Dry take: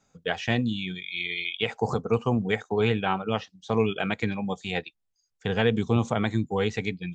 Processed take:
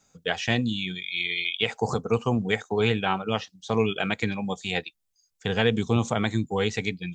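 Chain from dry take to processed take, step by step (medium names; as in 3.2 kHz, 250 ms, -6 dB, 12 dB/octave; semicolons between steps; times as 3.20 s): treble shelf 3.9 kHz +9.5 dB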